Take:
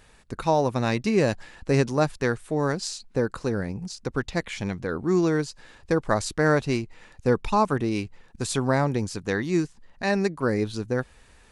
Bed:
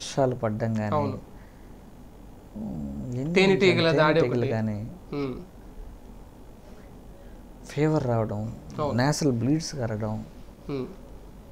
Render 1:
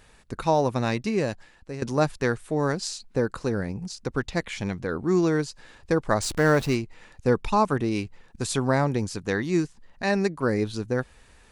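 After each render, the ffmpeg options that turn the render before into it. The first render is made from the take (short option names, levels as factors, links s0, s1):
-filter_complex "[0:a]asettb=1/sr,asplit=3[s0][s1][s2];[s0]atrim=end=6.224[s3];[s1]atrim=start=6.22:end=6.75,asetpts=PTS-STARTPTS,afade=t=in:d=0.004:c=qsin,afade=t=out:st=0.526:d=0.004:c=qsin,aeval=exprs='val(0)+0.5*0.0224*sgn(val(0))':c=same[s4];[s2]atrim=start=6.746[s5];[s3][s4]acrossfade=d=0.004:c1=hsin:c2=qsin[s6];[s6][s5]acrossfade=d=0.004:c1=qsin:c2=hsin,asplit=2[s7][s8];[s7]atrim=end=1.82,asetpts=PTS-STARTPTS,afade=t=out:st=0.73:d=1.09:silence=0.141254[s9];[s8]atrim=start=1.82,asetpts=PTS-STARTPTS,afade=t=in:d=0.004:c=hsin:silence=0.141254[s10];[s9][s10]concat=n=2:v=0:a=1"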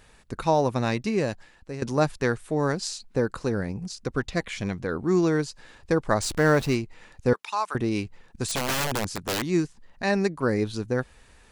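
-filter_complex "[0:a]asettb=1/sr,asplit=3[s0][s1][s2];[s0]atrim=end=3.824[s3];[s1]atrim=start=3.82:end=4.69,asetpts=PTS-STARTPTS,afade=t=in:d=0.004:c=qsin,afade=t=out:st=0.866:d=0.004:c=qsin,asuperstop=centerf=870:order=8:qfactor=7.2[s4];[s2]atrim=start=4.686[s5];[s3][s4]acrossfade=d=0.004:c1=hsin:c2=qsin[s6];[s6][s5]acrossfade=d=0.004:c1=qsin:c2=hsin,asettb=1/sr,asplit=3[s7][s8][s9];[s7]atrim=end=7.334[s10];[s8]atrim=start=7.33:end=7.75,asetpts=PTS-STARTPTS,afade=t=in:d=0.004:c=qsin,afade=t=out:st=0.416:d=0.004:c=qsin,highpass=1100[s11];[s9]atrim=start=7.746[s12];[s10][s11]acrossfade=d=0.004:c1=hsin:c2=qsin[s13];[s13][s12]acrossfade=d=0.004:c1=qsin:c2=hsin,asettb=1/sr,asplit=3[s14][s15][s16];[s14]atrim=end=8.444[s17];[s15]atrim=start=8.44:end=9.42,asetpts=PTS-STARTPTS,afade=t=in:d=0.004:c=qsin,afade=t=out:st=0.976:d=0.004:c=qsin,aeval=exprs='(mod(10.6*val(0)+1,2)-1)/10.6':c=same[s18];[s16]atrim=start=9.416[s19];[s17][s18]acrossfade=d=0.004:c1=hsin:c2=qsin[s20];[s20][s19]acrossfade=d=0.004:c1=qsin:c2=hsin"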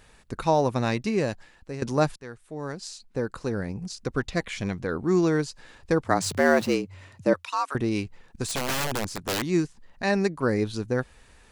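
-filter_complex "[0:a]asettb=1/sr,asplit=3[s0][s1][s2];[s0]atrim=end=6.044[s3];[s1]atrim=start=6.04:end=7.72,asetpts=PTS-STARTPTS,afade=t=in:d=0.004:c=qsin,afade=t=out:st=1.676:d=0.004:c=qsin,afreqshift=84[s4];[s2]atrim=start=7.716[s5];[s3][s4]acrossfade=d=0.004:c1=hsin:c2=qsin[s6];[s6][s5]acrossfade=d=0.004:c1=qsin:c2=hsin,asettb=1/sr,asplit=3[s7][s8][s9];[s7]atrim=end=8.424[s10];[s8]atrim=start=8.42:end=9.27,asetpts=PTS-STARTPTS,afade=t=in:d=0.004:c=qsin,afade=t=out:st=0.846:d=0.004:c=qsin,aeval=exprs='if(lt(val(0),0),0.708*val(0),val(0))':c=same[s11];[s9]atrim=start=9.266[s12];[s10][s11]acrossfade=d=0.004:c1=hsin:c2=qsin[s13];[s13][s12]acrossfade=d=0.004:c1=qsin:c2=hsin,asplit=2[s14][s15];[s14]atrim=end=2.16,asetpts=PTS-STARTPTS,afade=t=out:st=2.156:d=0.004:c=hsin:silence=0.1[s16];[s15]atrim=start=2.16,asetpts=PTS-STARTPTS,afade=t=in:d=1.81:silence=0.1[s17];[s16][s17]concat=n=2:v=0:a=1"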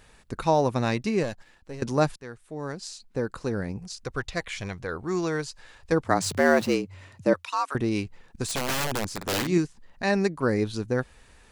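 -filter_complex "[0:a]asettb=1/sr,asplit=3[s0][s1][s2];[s0]atrim=end=1.234[s3];[s1]atrim=start=1.23:end=1.82,asetpts=PTS-STARTPTS,afade=t=in:d=0.004:c=qsin,afade=t=out:st=0.586:d=0.004:c=qsin,aeval=exprs='if(lt(val(0),0),0.447*val(0),val(0))':c=same[s4];[s2]atrim=start=1.816[s5];[s3][s4]acrossfade=d=0.004:c1=hsin:c2=qsin[s6];[s6][s5]acrossfade=d=0.004:c1=qsin:c2=hsin,asettb=1/sr,asplit=3[s7][s8][s9];[s7]atrim=end=3.784[s10];[s8]atrim=start=3.78:end=5.92,asetpts=PTS-STARTPTS,afade=t=in:d=0.004:c=qsin,afade=t=out:st=2.136:d=0.004:c=qsin,equalizer=f=240:t=o:w=1.5:g=-9.5[s11];[s9]atrim=start=5.916[s12];[s10][s11]acrossfade=d=0.004:c1=hsin:c2=qsin[s13];[s13][s12]acrossfade=d=0.004:c1=qsin:c2=hsin,asettb=1/sr,asplit=3[s14][s15][s16];[s14]atrim=end=9.164[s17];[s15]atrim=start=9.16:end=9.58,asetpts=PTS-STARTPTS,afade=t=in:d=0.004:c=qsin,afade=t=out:st=0.416:d=0.004:c=qsin,asplit=2[s18][s19];[s19]adelay=50,volume=0.501[s20];[s18][s20]amix=inputs=2:normalize=0,atrim=end_sample=18522[s21];[s16]atrim=start=9.576[s22];[s17][s21]acrossfade=d=0.004:c1=hsin:c2=qsin[s23];[s23][s22]acrossfade=d=0.004:c1=qsin:c2=hsin"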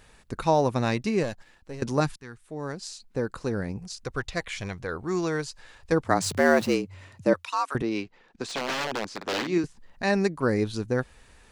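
-filter_complex "[0:a]asettb=1/sr,asplit=3[s0][s1][s2];[s0]atrim=end=2.004[s3];[s1]atrim=start=2:end=2.45,asetpts=PTS-STARTPTS,afade=t=in:d=0.004:c=qsin,afade=t=out:st=0.446:d=0.004:c=qsin,equalizer=f=570:w=2.3:g=-13.5[s4];[s2]atrim=start=2.446[s5];[s3][s4]acrossfade=d=0.004:c1=hsin:c2=qsin[s6];[s6][s5]acrossfade=d=0.004:c1=qsin:c2=hsin,asettb=1/sr,asplit=3[s7][s8][s9];[s7]atrim=end=7.824[s10];[s8]atrim=start=7.82:end=9.64,asetpts=PTS-STARTPTS,afade=t=in:d=0.004:c=qsin,afade=t=out:st=1.816:d=0.004:c=qsin,acrossover=split=210 5900:gain=0.158 1 0.1[s11][s12][s13];[s11][s12][s13]amix=inputs=3:normalize=0[s14];[s9]atrim=start=9.636[s15];[s10][s14]acrossfade=d=0.004:c1=hsin:c2=qsin[s16];[s16][s15]acrossfade=d=0.004:c1=qsin:c2=hsin"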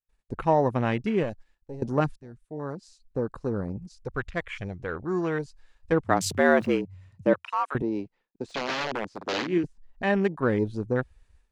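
-af "afwtdn=0.0158,agate=range=0.0224:threshold=0.00224:ratio=3:detection=peak"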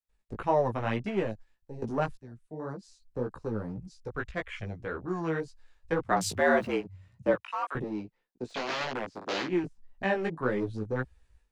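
-filter_complex "[0:a]acrossover=split=340|450|2500[s0][s1][s2][s3];[s0]asoftclip=type=hard:threshold=0.0335[s4];[s4][s1][s2][s3]amix=inputs=4:normalize=0,flanger=delay=15:depth=4:speed=1.8"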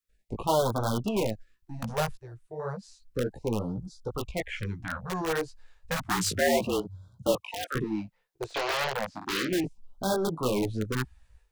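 -filter_complex "[0:a]asplit=2[s0][s1];[s1]aeval=exprs='(mod(16.8*val(0)+1,2)-1)/16.8':c=same,volume=0.668[s2];[s0][s2]amix=inputs=2:normalize=0,afftfilt=real='re*(1-between(b*sr/1024,210*pow(2300/210,0.5+0.5*sin(2*PI*0.32*pts/sr))/1.41,210*pow(2300/210,0.5+0.5*sin(2*PI*0.32*pts/sr))*1.41))':imag='im*(1-between(b*sr/1024,210*pow(2300/210,0.5+0.5*sin(2*PI*0.32*pts/sr))/1.41,210*pow(2300/210,0.5+0.5*sin(2*PI*0.32*pts/sr))*1.41))':win_size=1024:overlap=0.75"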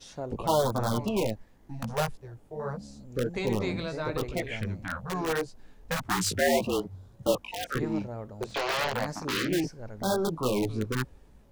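-filter_complex "[1:a]volume=0.211[s0];[0:a][s0]amix=inputs=2:normalize=0"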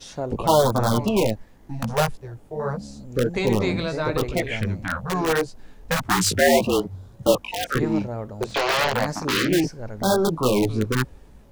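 -af "volume=2.37"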